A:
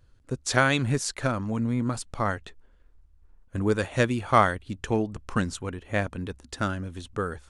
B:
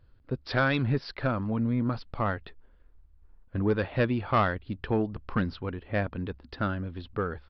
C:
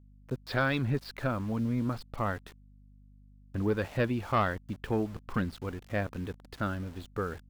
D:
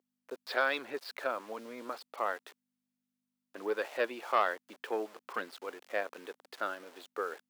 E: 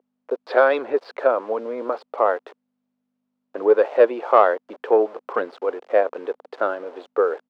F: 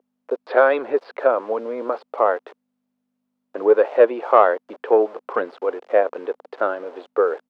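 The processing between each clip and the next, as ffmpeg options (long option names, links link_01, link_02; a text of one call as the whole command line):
ffmpeg -i in.wav -af "aresample=11025,asoftclip=type=tanh:threshold=-15.5dB,aresample=44100,highshelf=frequency=3500:gain=-8.5" out.wav
ffmpeg -i in.wav -af "aeval=exprs='val(0)*gte(abs(val(0)),0.00708)':channel_layout=same,aeval=exprs='val(0)+0.00251*(sin(2*PI*50*n/s)+sin(2*PI*2*50*n/s)/2+sin(2*PI*3*50*n/s)/3+sin(2*PI*4*50*n/s)/4+sin(2*PI*5*50*n/s)/5)':channel_layout=same,volume=-3dB" out.wav
ffmpeg -i in.wav -af "highpass=frequency=410:width=0.5412,highpass=frequency=410:width=1.3066" out.wav
ffmpeg -i in.wav -af "firequalizer=gain_entry='entry(150,0);entry(470,13);entry(700,9);entry(1800,-2);entry(12000,-28)':delay=0.05:min_phase=1,volume=7dB" out.wav
ffmpeg -i in.wav -filter_complex "[0:a]acrossover=split=3700[link_01][link_02];[link_02]acompressor=threshold=-59dB:ratio=4:attack=1:release=60[link_03];[link_01][link_03]amix=inputs=2:normalize=0,volume=1dB" out.wav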